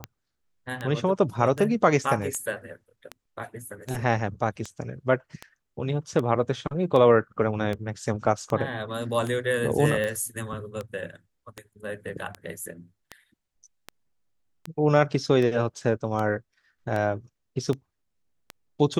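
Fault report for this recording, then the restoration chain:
tick 78 rpm -18 dBFS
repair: de-click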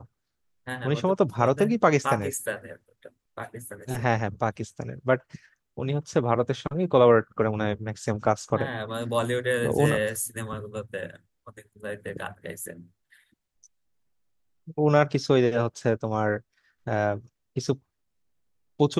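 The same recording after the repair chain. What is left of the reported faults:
none

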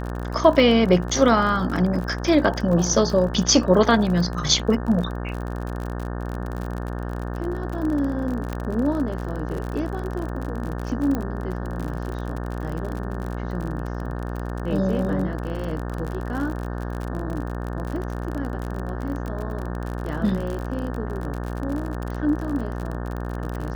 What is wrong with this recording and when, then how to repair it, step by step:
buzz 60 Hz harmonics 30 -29 dBFS
crackle 45/s -28 dBFS
8.53 pop -15 dBFS
11.15 pop -14 dBFS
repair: de-click; de-hum 60 Hz, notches 30

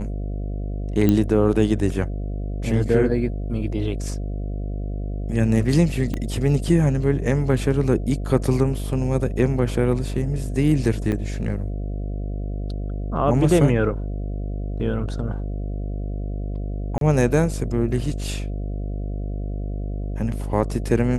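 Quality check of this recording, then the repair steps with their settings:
buzz 50 Hz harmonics 14 -27 dBFS
1.09 pop -7 dBFS
6.14 pop -15 dBFS
11.12 gap 4.2 ms
16.98–17.01 gap 32 ms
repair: de-click; de-hum 50 Hz, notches 14; interpolate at 11.12, 4.2 ms; interpolate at 16.98, 32 ms

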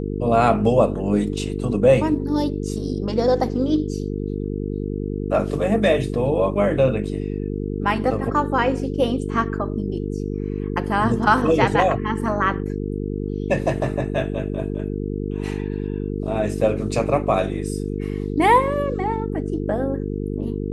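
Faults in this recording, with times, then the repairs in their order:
buzz 50 Hz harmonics 9 -26 dBFS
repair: de-hum 50 Hz, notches 9

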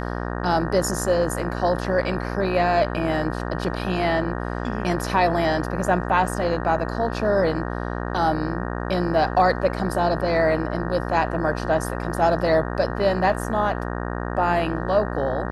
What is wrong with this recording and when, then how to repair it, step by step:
buzz 60 Hz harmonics 31 -28 dBFS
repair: de-hum 60 Hz, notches 31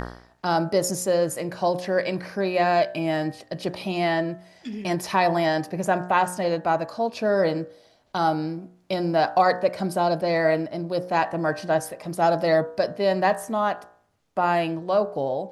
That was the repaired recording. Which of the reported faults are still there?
none

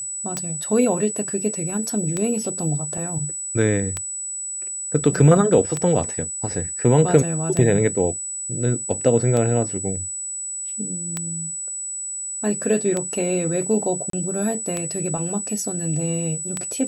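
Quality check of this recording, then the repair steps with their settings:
tick 33 1/3 rpm -10 dBFS
tone 7900 Hz -27 dBFS
14.1–14.13 gap 33 ms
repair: de-click; notch 7900 Hz, Q 30; interpolate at 14.1, 33 ms

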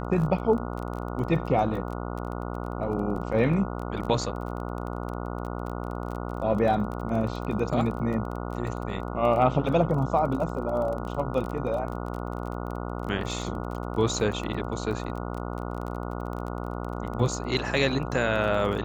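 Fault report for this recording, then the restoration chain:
buzz 60 Hz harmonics 24 -33 dBFS
crackle 23/s -33 dBFS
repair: de-click; de-hum 60 Hz, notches 24

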